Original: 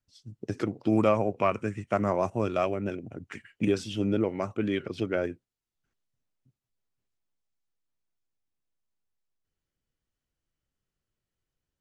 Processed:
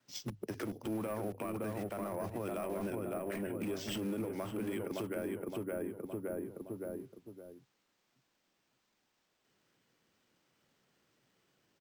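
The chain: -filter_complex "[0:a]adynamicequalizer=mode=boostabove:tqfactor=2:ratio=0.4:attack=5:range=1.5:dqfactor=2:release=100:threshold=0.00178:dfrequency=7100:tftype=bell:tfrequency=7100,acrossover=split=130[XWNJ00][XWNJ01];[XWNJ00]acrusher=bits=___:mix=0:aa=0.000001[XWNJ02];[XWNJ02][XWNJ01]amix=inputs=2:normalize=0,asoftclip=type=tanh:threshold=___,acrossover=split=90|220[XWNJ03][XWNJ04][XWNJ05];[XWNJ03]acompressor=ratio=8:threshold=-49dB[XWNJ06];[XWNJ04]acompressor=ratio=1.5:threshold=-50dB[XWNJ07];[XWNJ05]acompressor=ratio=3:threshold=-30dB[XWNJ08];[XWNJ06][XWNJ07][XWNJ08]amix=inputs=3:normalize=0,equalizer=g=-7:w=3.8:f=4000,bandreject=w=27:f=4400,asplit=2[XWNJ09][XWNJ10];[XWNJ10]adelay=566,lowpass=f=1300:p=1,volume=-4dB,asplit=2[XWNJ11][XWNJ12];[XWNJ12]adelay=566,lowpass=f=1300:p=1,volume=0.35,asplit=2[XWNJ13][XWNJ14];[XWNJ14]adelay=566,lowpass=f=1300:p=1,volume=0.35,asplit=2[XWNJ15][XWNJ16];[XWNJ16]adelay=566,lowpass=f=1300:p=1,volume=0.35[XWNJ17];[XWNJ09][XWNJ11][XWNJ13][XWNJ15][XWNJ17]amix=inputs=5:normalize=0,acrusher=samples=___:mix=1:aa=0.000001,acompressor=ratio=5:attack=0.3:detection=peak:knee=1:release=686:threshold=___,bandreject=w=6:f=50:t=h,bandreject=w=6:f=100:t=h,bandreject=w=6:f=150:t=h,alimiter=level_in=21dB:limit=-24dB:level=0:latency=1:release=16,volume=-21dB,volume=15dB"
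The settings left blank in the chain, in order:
6, -17dB, 4, -47dB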